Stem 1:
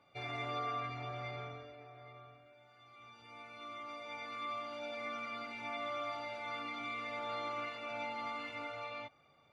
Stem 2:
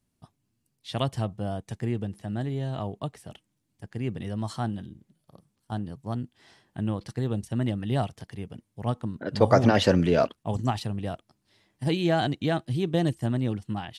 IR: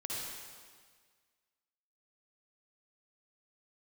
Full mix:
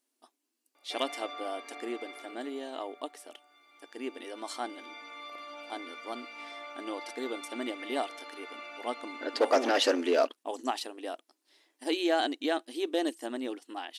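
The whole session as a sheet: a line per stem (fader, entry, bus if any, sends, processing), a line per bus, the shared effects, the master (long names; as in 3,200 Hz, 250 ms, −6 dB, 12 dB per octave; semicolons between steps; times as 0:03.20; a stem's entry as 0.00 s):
+3.0 dB, 0.75 s, send −9.5 dB, brickwall limiter −33.5 dBFS, peak gain reduction 5 dB; automatic ducking −12 dB, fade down 1.85 s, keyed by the second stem
−2.5 dB, 0.00 s, no send, no processing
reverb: on, RT60 1.7 s, pre-delay 49 ms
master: high-shelf EQ 3,000 Hz +5 dB; hard clipping −16.5 dBFS, distortion −15 dB; linear-phase brick-wall high-pass 250 Hz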